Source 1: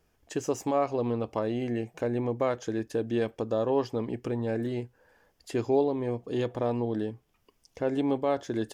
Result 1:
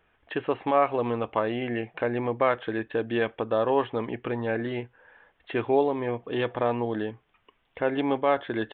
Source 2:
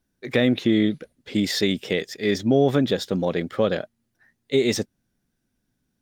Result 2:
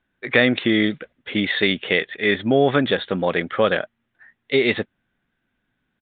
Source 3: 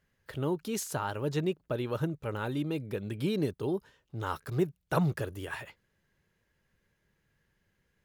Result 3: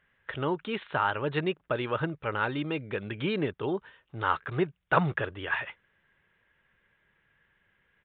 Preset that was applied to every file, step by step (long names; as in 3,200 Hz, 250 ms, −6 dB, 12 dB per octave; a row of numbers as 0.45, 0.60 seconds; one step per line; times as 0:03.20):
parametric band 1,700 Hz +12.5 dB 2.8 octaves
downsampling to 8,000 Hz
level −2 dB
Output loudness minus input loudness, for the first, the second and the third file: +2.5, +2.5, +2.5 LU